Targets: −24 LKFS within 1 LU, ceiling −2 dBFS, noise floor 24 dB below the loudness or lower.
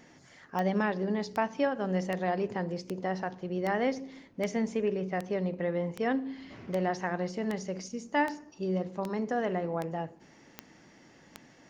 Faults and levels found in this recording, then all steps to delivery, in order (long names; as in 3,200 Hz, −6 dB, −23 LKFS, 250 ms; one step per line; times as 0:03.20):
number of clicks 15; integrated loudness −32.5 LKFS; sample peak −14.5 dBFS; target loudness −24.0 LKFS
→ click removal
level +8.5 dB